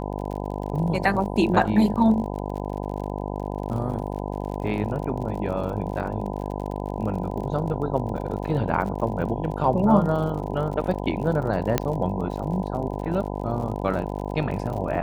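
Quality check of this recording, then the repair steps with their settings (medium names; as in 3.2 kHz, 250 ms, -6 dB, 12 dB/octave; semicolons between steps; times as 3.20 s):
buzz 50 Hz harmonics 20 -30 dBFS
crackle 55 per s -33 dBFS
11.78 s: pop -6 dBFS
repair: de-click; de-hum 50 Hz, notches 20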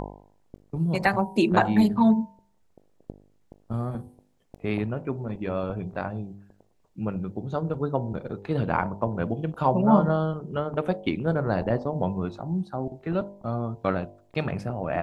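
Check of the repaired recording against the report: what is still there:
nothing left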